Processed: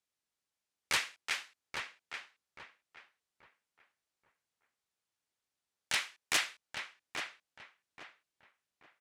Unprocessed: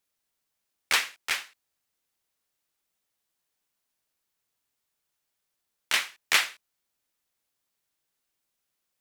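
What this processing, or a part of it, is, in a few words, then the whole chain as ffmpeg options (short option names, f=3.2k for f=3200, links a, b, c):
overflowing digital effects unit: -filter_complex "[0:a]aeval=exprs='(mod(4.22*val(0)+1,2)-1)/4.22':c=same,highpass=41,lowpass=9.2k,asettb=1/sr,asplit=3[a][b][c];[a]atrim=end=5.984[d];[b]atrim=start=5.98:end=6.42,asetpts=PTS-STARTPTS,afade=t=in:d=0.004:c=qsin,afade=t=out:st=0.436:d=0.004:c=qsin,lowshelf=f=130:g=-12[e];[c]atrim=start=6.416[f];[d][e]acrossfade=d=0.004:c1=hsin:c2=qsin[g];[g][f]acrossfade=d=0.004:c1=qsin:c2=hsin,asplit=2[h][i];[i]adelay=831,lowpass=f=2.2k:p=1,volume=-5dB,asplit=2[j][k];[k]adelay=831,lowpass=f=2.2k:p=1,volume=0.32,asplit=2[l][m];[m]adelay=831,lowpass=f=2.2k:p=1,volume=0.32,asplit=2[n][o];[o]adelay=831,lowpass=f=2.2k:p=1,volume=0.32[p];[h][j][l][n][p]amix=inputs=5:normalize=0,volume=-6.5dB"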